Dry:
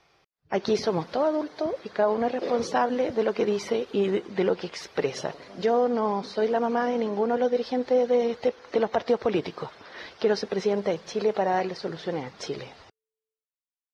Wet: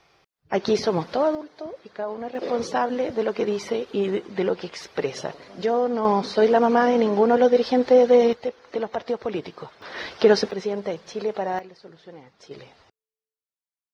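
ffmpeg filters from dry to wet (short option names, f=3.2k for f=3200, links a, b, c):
-af "asetnsamples=n=441:p=0,asendcmd='1.35 volume volume -7dB;2.35 volume volume 0.5dB;6.05 volume volume 7dB;8.33 volume volume -3dB;9.82 volume volume 7.5dB;10.51 volume volume -2dB;11.59 volume volume -13dB;12.51 volume volume -5.5dB',volume=3dB"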